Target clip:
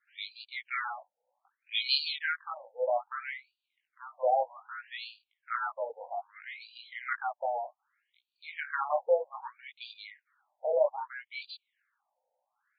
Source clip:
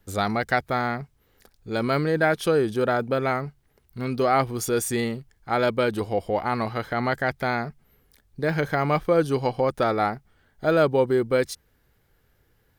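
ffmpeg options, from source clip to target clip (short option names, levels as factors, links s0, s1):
-filter_complex "[0:a]asettb=1/sr,asplit=3[s0][s1][s2];[s0]atrim=end=0.654[s3];[s1]atrim=start=0.65:end=2.17,asetpts=PTS-STARTPTS,afade=t=in:d=0.004:c=qsin,afade=t=out:st=1.516:d=0.004:c=qsin,highshelf=f=2100:t=q:w=1.5:g=14[s4];[s2]atrim=start=2.166[s5];[s3][s4]acrossfade=d=0.004:c1=hsin:c2=qsin[s6];[s6][s5]acrossfade=d=0.004:c1=qsin:c2=hsin,asoftclip=type=tanh:threshold=0.355,flanger=delay=17.5:depth=4:speed=0.72,afftfilt=real='re*between(b*sr/1024,660*pow(3400/660,0.5+0.5*sin(2*PI*0.63*pts/sr))/1.41,660*pow(3400/660,0.5+0.5*sin(2*PI*0.63*pts/sr))*1.41)':imag='im*between(b*sr/1024,660*pow(3400/660,0.5+0.5*sin(2*PI*0.63*pts/sr))/1.41,660*pow(3400/660,0.5+0.5*sin(2*PI*0.63*pts/sr))*1.41)':win_size=1024:overlap=0.75"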